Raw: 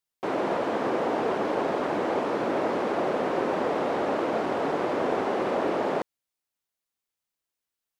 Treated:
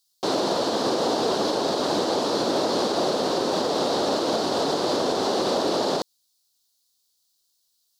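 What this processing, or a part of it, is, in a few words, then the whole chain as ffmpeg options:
over-bright horn tweeter: -af "highshelf=frequency=3100:width_type=q:width=3:gain=11.5,alimiter=limit=-18.5dB:level=0:latency=1:release=78,volume=4.5dB"

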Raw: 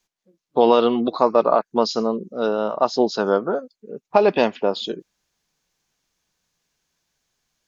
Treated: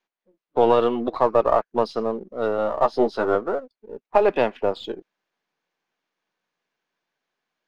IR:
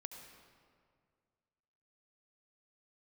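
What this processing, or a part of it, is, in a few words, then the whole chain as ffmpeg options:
crystal radio: -filter_complex "[0:a]highpass=280,lowpass=2500,aeval=exprs='if(lt(val(0),0),0.708*val(0),val(0))':channel_layout=same,asettb=1/sr,asplit=3[link_01][link_02][link_03];[link_01]atrim=end=2.574[link_04];[link_02]atrim=start=2.57:end=3.35,asetpts=PTS-STARTPTS,afade=type=in:duration=0.004:curve=qsin,afade=type=out:start_time=0.776:duration=0.004:curve=qsin,asplit=2[link_05][link_06];[link_06]adelay=13,volume=-4dB[link_07];[link_05][link_07]amix=inputs=2:normalize=0,atrim=end_sample=34398[link_08];[link_03]atrim=start=3.346[link_09];[link_04][link_08]acrossfade=duration=0.004:curve1=hsin:curve2=qsin[link_10];[link_10][link_09]acrossfade=duration=0.004:curve1=qsin:curve2=hsin"

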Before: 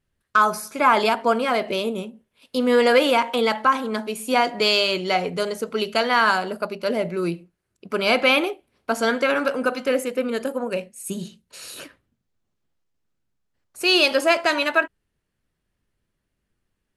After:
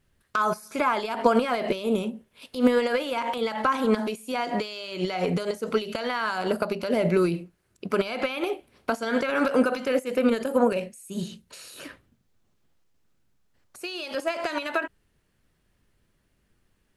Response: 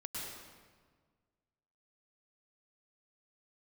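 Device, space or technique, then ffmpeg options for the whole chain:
de-esser from a sidechain: -filter_complex "[0:a]asplit=2[link_01][link_02];[link_02]highpass=5900,apad=whole_len=748069[link_03];[link_01][link_03]sidechaincompress=threshold=-52dB:ratio=8:attack=1.7:release=63,volume=7.5dB"

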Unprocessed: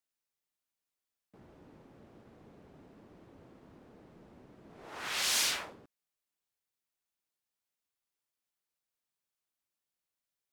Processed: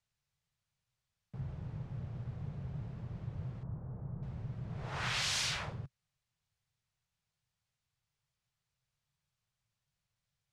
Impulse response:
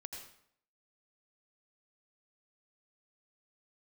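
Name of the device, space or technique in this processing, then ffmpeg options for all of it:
jukebox: -filter_complex "[0:a]lowpass=6600,lowshelf=frequency=190:width_type=q:width=3:gain=13,acompressor=threshold=-37dB:ratio=4,asettb=1/sr,asplit=3[link_01][link_02][link_03];[link_01]atrim=end=3.634[link_04];[link_02]atrim=start=3.63:end=4.23,asetpts=PTS-STARTPTS,afade=type=in:duration=0.004:curve=qsin,afade=type=out:start_time=0.596:duration=0.004:curve=qsin,lowpass=frequency=1300:width=0.5412,lowpass=frequency=1300:width=1.3066[link_05];[link_03]atrim=start=4.226[link_06];[link_04][link_05]acrossfade=duration=0.004:curve1=hsin:curve2=qsin[link_07];[link_07][link_06]acrossfade=duration=0.004:curve1=qsin:curve2=hsin,volume=4.5dB"

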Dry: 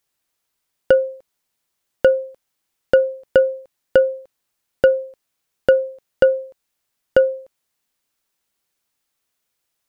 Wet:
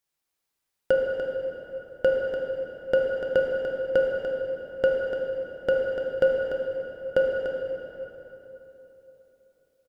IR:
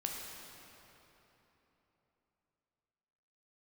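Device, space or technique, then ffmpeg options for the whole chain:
cave: -filter_complex "[0:a]aecho=1:1:293:0.376[link_01];[1:a]atrim=start_sample=2205[link_02];[link_01][link_02]afir=irnorm=-1:irlink=0,volume=-7dB"

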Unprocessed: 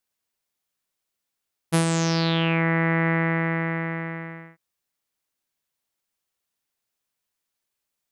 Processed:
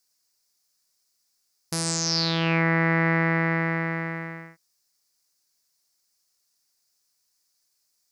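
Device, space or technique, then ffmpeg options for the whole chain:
over-bright horn tweeter: -af "equalizer=frequency=3000:width=0.52:gain=5,highshelf=frequency=4000:width_type=q:width=3:gain=7.5,alimiter=limit=-11dB:level=0:latency=1:release=427"

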